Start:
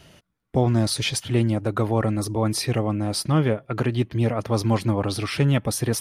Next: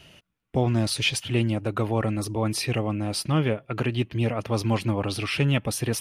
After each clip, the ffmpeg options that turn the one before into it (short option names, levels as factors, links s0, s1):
-af "equalizer=f=2700:w=2.8:g=9,volume=0.708"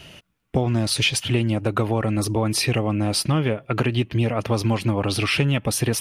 -af "acompressor=threshold=0.0631:ratio=6,volume=2.37"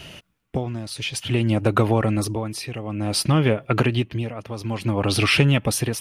-af "tremolo=f=0.56:d=0.8,volume=1.5"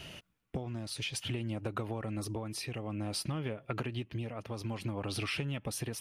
-af "acompressor=threshold=0.0501:ratio=6,volume=0.447"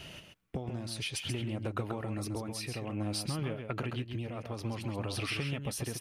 -af "aecho=1:1:134:0.473"